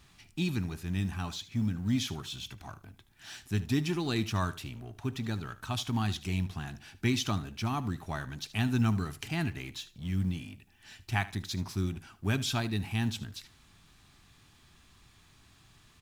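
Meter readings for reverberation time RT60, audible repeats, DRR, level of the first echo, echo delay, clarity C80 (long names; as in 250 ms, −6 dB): no reverb audible, 2, no reverb audible, −17.0 dB, 75 ms, no reverb audible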